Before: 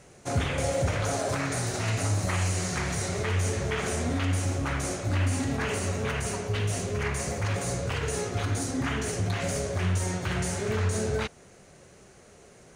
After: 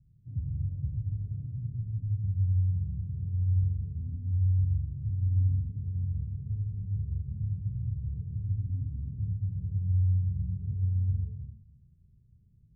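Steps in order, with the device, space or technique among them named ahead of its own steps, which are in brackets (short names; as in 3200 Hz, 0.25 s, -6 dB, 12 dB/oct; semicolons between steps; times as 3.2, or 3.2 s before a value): club heard from the street (limiter -20 dBFS, peak gain reduction 4.5 dB; LPF 140 Hz 24 dB/oct; reverb RT60 0.85 s, pre-delay 0.107 s, DRR 0.5 dB); gain -2 dB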